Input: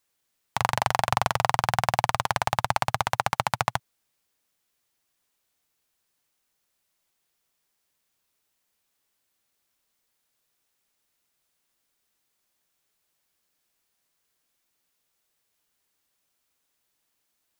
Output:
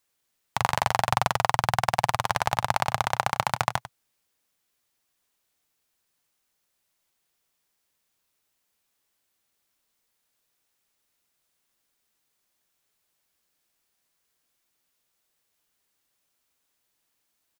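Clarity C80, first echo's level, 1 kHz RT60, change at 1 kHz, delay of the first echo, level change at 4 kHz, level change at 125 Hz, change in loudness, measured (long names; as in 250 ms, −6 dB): no reverb audible, −14.0 dB, no reverb audible, 0.0 dB, 97 ms, 0.0 dB, 0.0 dB, 0.0 dB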